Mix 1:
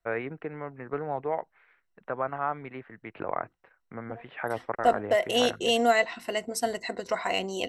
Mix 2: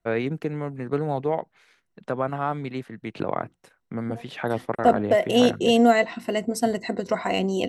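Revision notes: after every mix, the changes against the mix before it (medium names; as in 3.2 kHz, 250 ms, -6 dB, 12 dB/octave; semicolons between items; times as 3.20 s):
first voice: remove low-pass 2.2 kHz 24 dB/octave; master: add peaking EQ 180 Hz +13 dB 2.6 oct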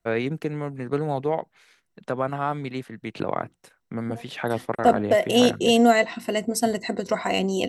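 master: add treble shelf 3.8 kHz +6.5 dB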